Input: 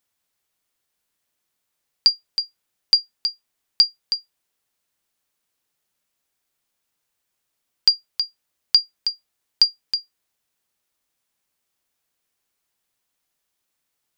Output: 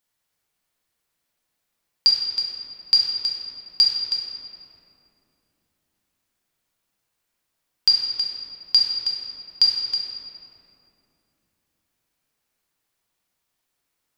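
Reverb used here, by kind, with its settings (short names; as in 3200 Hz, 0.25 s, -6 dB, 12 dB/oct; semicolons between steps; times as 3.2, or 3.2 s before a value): shoebox room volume 130 m³, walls hard, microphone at 0.59 m; gain -3 dB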